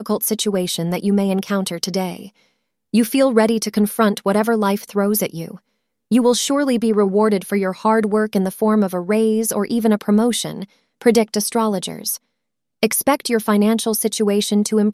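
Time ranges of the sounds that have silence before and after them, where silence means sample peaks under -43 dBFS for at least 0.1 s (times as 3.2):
2.93–5.58
6.11–10.65
11.02–12.17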